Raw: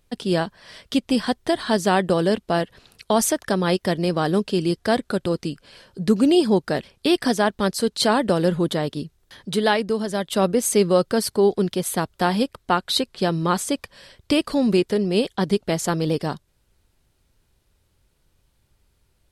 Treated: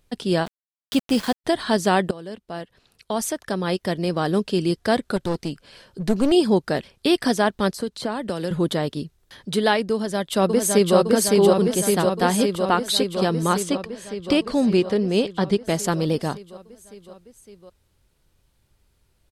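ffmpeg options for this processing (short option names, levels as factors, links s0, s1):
-filter_complex "[0:a]asplit=3[s0][s1][s2];[s0]afade=t=out:st=0.45:d=0.02[s3];[s1]aeval=exprs='val(0)*gte(abs(val(0)),0.0335)':c=same,afade=t=in:st=0.45:d=0.02,afade=t=out:st=1.44:d=0.02[s4];[s2]afade=t=in:st=1.44:d=0.02[s5];[s3][s4][s5]amix=inputs=3:normalize=0,asettb=1/sr,asplit=3[s6][s7][s8];[s6]atrim=end=5.164[s9];[s7]atrim=start=5.16:end=6.32,asetpts=PTS-STARTPTS,afade=t=in:d=0.004:c=qsin,afade=t=out:st=1.156:d=0.004:c=qsin,aeval=exprs='clip(val(0),-1,0.0501)':c=same[s10];[s8]atrim=start=6.316[s11];[s9][s10]acrossfade=d=0.004:c1=hsin:c2=qsin[s12];[s12][s11]acrossfade=d=0.004:c1=qsin:c2=hsin,asettb=1/sr,asplit=3[s13][s14][s15];[s13]atrim=end=7.744[s16];[s14]atrim=start=7.74:end=8.51,asetpts=PTS-STARTPTS,afade=t=in:d=0.004:c=qsin,afade=t=out:st=0.766:d=0.004:c=qsin,acrossover=split=160|1700[s17][s18][s19];[s17]acompressor=threshold=0.00891:ratio=4[s20];[s18]acompressor=threshold=0.0562:ratio=4[s21];[s19]acompressor=threshold=0.0141:ratio=4[s22];[s20][s21][s22]amix=inputs=3:normalize=0[s23];[s15]atrim=start=8.506[s24];[s16][s23]acrossfade=d=0.004:c1=hsin:c2=qsin[s25];[s25][s24]acrossfade=d=0.004:c1=qsin:c2=hsin,asplit=2[s26][s27];[s27]afade=t=in:st=9.93:d=0.01,afade=t=out:st=10.97:d=0.01,aecho=0:1:560|1120|1680|2240|2800|3360|3920|4480|5040|5600|6160|6720:0.841395|0.631046|0.473285|0.354964|0.266223|0.199667|0.14975|0.112313|0.0842345|0.0631759|0.0473819|0.0355364[s28];[s26][s28]amix=inputs=2:normalize=0,asettb=1/sr,asplit=3[s29][s30][s31];[s29]atrim=end=13.634[s32];[s30]atrim=start=13.63:end=15.65,asetpts=PTS-STARTPTS,afade=t=in:d=0.004:c=qsin,afade=t=out:st=2.016:d=0.004:c=qsin,adynamicsmooth=sensitivity=1:basefreq=7700[s33];[s31]atrim=start=15.646[s34];[s32][s33]acrossfade=d=0.004:c1=hsin:c2=qsin[s35];[s35][s34]acrossfade=d=0.004:c1=qsin:c2=hsin,asplit=2[s36][s37];[s36]atrim=end=2.11,asetpts=PTS-STARTPTS,afade=t=out:st=2.106:d=0.004:c=hsin:silence=0.112202[s38];[s37]atrim=start=2.11,asetpts=PTS-STARTPTS,afade=t=in:d=2.48:silence=0.112202[s39];[s38][s39]concat=n=2:v=0:a=1"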